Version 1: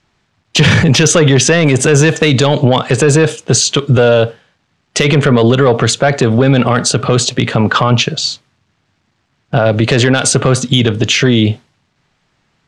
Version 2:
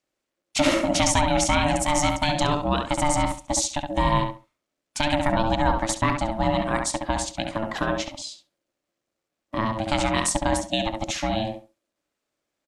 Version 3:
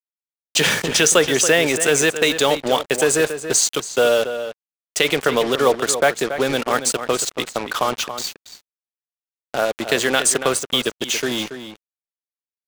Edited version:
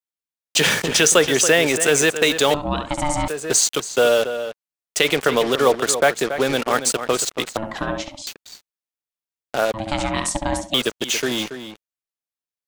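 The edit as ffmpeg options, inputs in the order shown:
-filter_complex "[1:a]asplit=3[a][b][c];[2:a]asplit=4[d][e][f][g];[d]atrim=end=2.542[h];[a]atrim=start=2.538:end=3.282[i];[e]atrim=start=3.278:end=7.572[j];[b]atrim=start=7.568:end=8.272[k];[f]atrim=start=8.268:end=9.742[l];[c]atrim=start=9.738:end=10.742[m];[g]atrim=start=10.738[n];[h][i]acrossfade=d=0.004:c1=hsin:c2=hsin[o];[o][j]acrossfade=d=0.004:c1=hsin:c2=hsin[p];[p][k]acrossfade=d=0.004:c1=hsin:c2=hsin[q];[q][l]acrossfade=d=0.004:c1=hsin:c2=hsin[r];[r][m]acrossfade=d=0.004:c1=hsin:c2=hsin[s];[s][n]acrossfade=d=0.004:c1=hsin:c2=hsin"

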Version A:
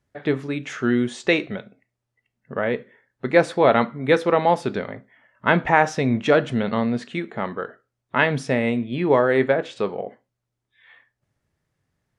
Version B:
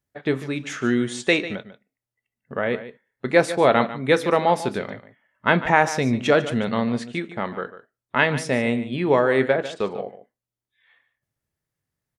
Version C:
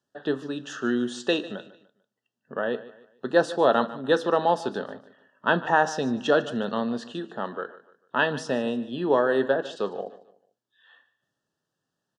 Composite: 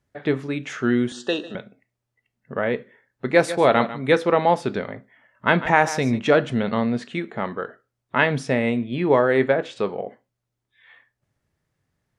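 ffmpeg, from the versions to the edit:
-filter_complex "[1:a]asplit=2[a][b];[0:a]asplit=4[c][d][e][f];[c]atrim=end=1.122[g];[2:a]atrim=start=1.118:end=1.552[h];[d]atrim=start=1.548:end=3.352[i];[a]atrim=start=3.348:end=4.122[j];[e]atrim=start=4.118:end=5.482[k];[b]atrim=start=5.478:end=6.192[l];[f]atrim=start=6.188[m];[g][h]acrossfade=d=0.004:c1=hsin:c2=hsin[n];[n][i]acrossfade=d=0.004:c1=hsin:c2=hsin[o];[o][j]acrossfade=d=0.004:c1=hsin:c2=hsin[p];[p][k]acrossfade=d=0.004:c1=hsin:c2=hsin[q];[q][l]acrossfade=d=0.004:c1=hsin:c2=hsin[r];[r][m]acrossfade=d=0.004:c1=hsin:c2=hsin"

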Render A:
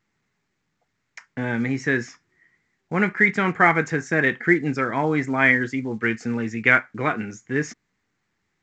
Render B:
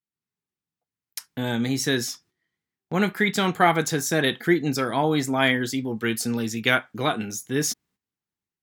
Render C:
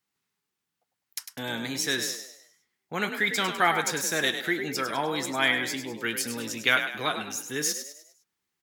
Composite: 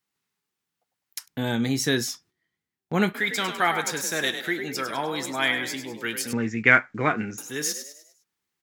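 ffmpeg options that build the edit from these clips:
-filter_complex "[2:a]asplit=3[a][b][c];[a]atrim=end=1.28[d];[1:a]atrim=start=1.26:end=3.16[e];[b]atrim=start=3.14:end=6.332[f];[0:a]atrim=start=6.328:end=7.382[g];[c]atrim=start=7.378[h];[d][e]acrossfade=d=0.02:c1=tri:c2=tri[i];[i][f]acrossfade=d=0.02:c1=tri:c2=tri[j];[j][g]acrossfade=d=0.004:c1=hsin:c2=hsin[k];[k][h]acrossfade=d=0.004:c1=hsin:c2=hsin"

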